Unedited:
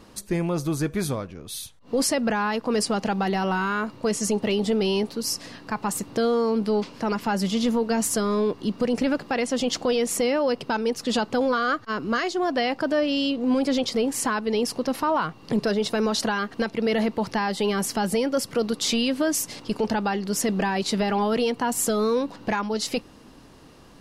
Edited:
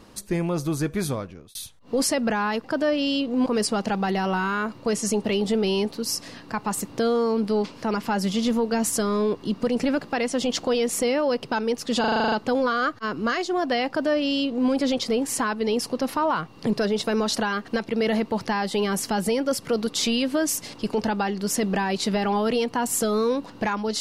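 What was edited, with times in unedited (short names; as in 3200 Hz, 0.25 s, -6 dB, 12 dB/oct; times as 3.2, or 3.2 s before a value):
1.18–1.55 fade out equal-power
11.18 stutter 0.04 s, 9 plays
12.74–13.56 copy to 2.64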